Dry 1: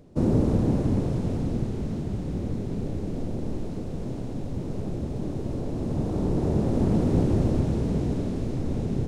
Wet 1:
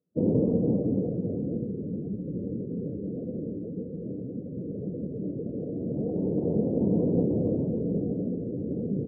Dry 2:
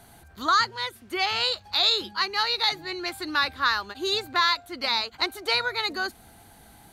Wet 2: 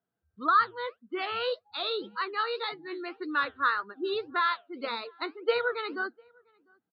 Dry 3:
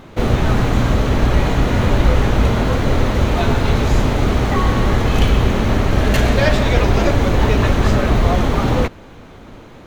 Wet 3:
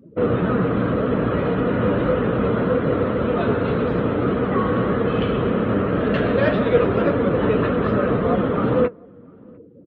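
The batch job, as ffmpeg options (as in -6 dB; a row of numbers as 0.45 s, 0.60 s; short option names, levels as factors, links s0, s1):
-filter_complex "[0:a]afftdn=nr=31:nf=-32,flanger=delay=4:depth=6.4:regen=71:speed=1.8:shape=sinusoidal,highpass=130,equalizer=f=180:t=q:w=4:g=6,equalizer=f=290:t=q:w=4:g=4,equalizer=f=480:t=q:w=4:g=10,equalizer=f=830:t=q:w=4:g=-7,equalizer=f=1300:t=q:w=4:g=6,equalizer=f=2200:t=q:w=4:g=-6,lowpass=f=3100:w=0.5412,lowpass=f=3100:w=1.3066,asplit=2[s0][s1];[s1]adelay=699.7,volume=0.0316,highshelf=f=4000:g=-15.7[s2];[s0][s2]amix=inputs=2:normalize=0"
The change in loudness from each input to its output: -2.0 LU, -5.5 LU, -3.5 LU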